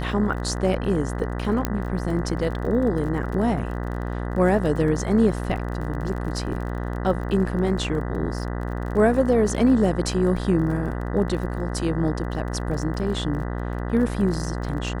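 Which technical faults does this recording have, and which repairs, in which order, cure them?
mains buzz 60 Hz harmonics 33 −28 dBFS
surface crackle 33 per second −32 dBFS
0:01.65: click −8 dBFS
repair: click removal
hum removal 60 Hz, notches 33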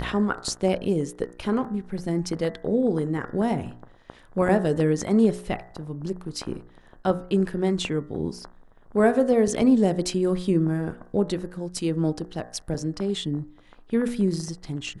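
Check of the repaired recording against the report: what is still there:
0:01.65: click

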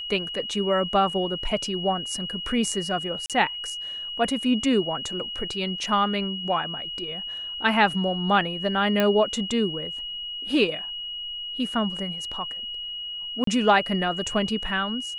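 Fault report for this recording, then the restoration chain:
whistle 2,900 Hz −31 dBFS
0:03.26–0:03.30: drop-out 37 ms
0:09.00: click −9 dBFS
0:13.44–0:13.47: drop-out 33 ms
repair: click removal
notch filter 2,900 Hz, Q 30
repair the gap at 0:03.26, 37 ms
repair the gap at 0:13.44, 33 ms

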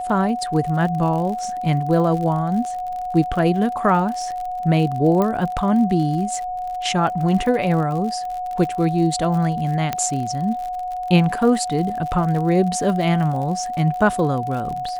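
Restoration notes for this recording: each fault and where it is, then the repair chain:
surface crackle 60 per second −28 dBFS
whistle 730 Hz −24 dBFS
0:05.22: click −10 dBFS
0:09.93: click −8 dBFS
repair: click removal
notch filter 730 Hz, Q 30

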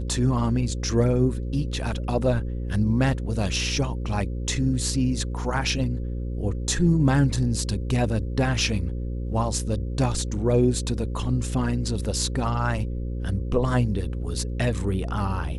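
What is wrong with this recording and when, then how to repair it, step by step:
mains buzz 60 Hz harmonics 9 −29 dBFS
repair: hum removal 60 Hz, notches 9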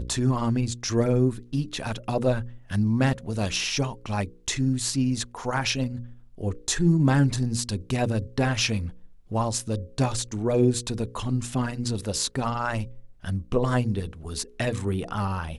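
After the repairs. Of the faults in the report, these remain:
none of them is left

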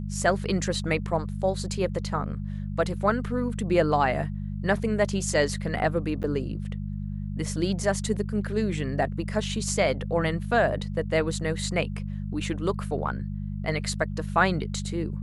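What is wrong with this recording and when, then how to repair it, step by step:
mains hum 50 Hz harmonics 4 −32 dBFS
0:06.23–0:06.24: drop-out 9 ms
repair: hum removal 50 Hz, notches 4
repair the gap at 0:06.23, 9 ms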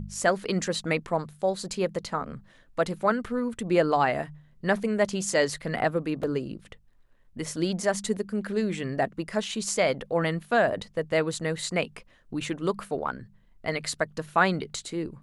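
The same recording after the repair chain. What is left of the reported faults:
none of them is left

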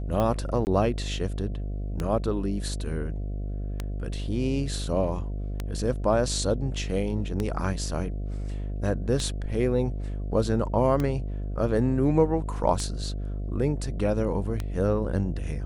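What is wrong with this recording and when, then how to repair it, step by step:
mains buzz 50 Hz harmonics 14 −31 dBFS
scratch tick 33 1/3 rpm −15 dBFS
0:00.65–0:00.67: drop-out 19 ms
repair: click removal
hum removal 50 Hz, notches 14
repair the gap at 0:00.65, 19 ms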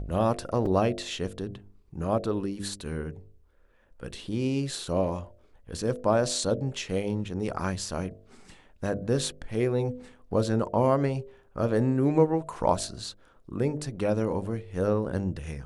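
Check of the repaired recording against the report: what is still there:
none of them is left

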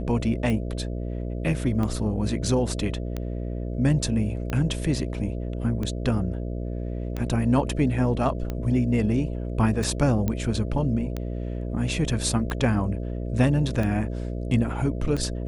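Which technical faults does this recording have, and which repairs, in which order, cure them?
mains buzz 60 Hz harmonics 11 −30 dBFS
scratch tick 45 rpm −17 dBFS
0:10.28: click −13 dBFS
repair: click removal
hum removal 60 Hz, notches 11

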